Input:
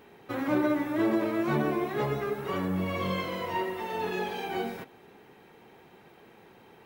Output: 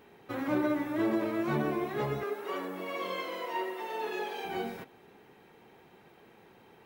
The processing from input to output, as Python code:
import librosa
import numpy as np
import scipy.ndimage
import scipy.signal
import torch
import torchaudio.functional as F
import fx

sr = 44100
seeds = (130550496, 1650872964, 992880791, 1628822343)

y = fx.highpass(x, sr, hz=290.0, slope=24, at=(2.23, 4.45))
y = F.gain(torch.from_numpy(y), -3.0).numpy()